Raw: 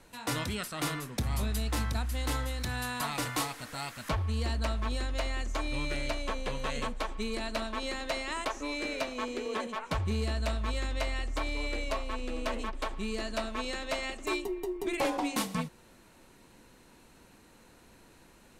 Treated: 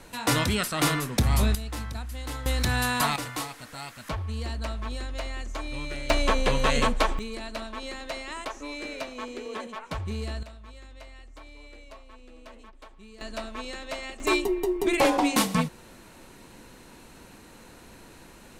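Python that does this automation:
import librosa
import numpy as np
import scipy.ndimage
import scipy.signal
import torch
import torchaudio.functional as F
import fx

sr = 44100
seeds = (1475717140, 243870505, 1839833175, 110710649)

y = fx.gain(x, sr, db=fx.steps((0.0, 9.0), (1.55, -3.0), (2.46, 9.0), (3.16, -1.0), (6.1, 11.0), (7.19, -1.5), (10.43, -14.0), (13.21, -1.5), (14.2, 8.5)))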